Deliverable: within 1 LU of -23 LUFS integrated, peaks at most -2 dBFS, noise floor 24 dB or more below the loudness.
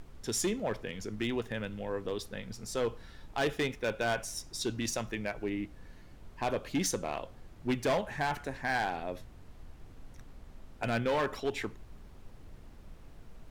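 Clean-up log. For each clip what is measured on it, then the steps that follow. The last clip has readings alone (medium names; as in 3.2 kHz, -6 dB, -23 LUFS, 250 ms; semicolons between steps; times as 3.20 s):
clipped samples 1.3%; clipping level -25.0 dBFS; noise floor -53 dBFS; noise floor target -59 dBFS; loudness -34.5 LUFS; peak level -25.0 dBFS; loudness target -23.0 LUFS
-> clip repair -25 dBFS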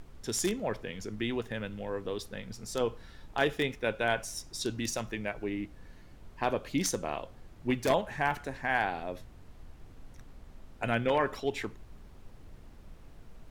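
clipped samples 0.0%; noise floor -53 dBFS; noise floor target -57 dBFS
-> noise print and reduce 6 dB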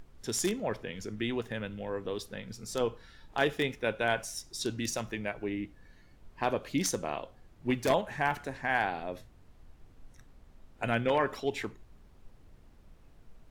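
noise floor -58 dBFS; loudness -33.0 LUFS; peak level -16.0 dBFS; loudness target -23.0 LUFS
-> trim +10 dB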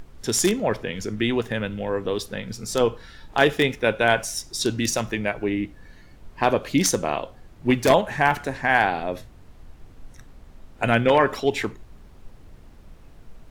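loudness -23.0 LUFS; peak level -6.0 dBFS; noise floor -48 dBFS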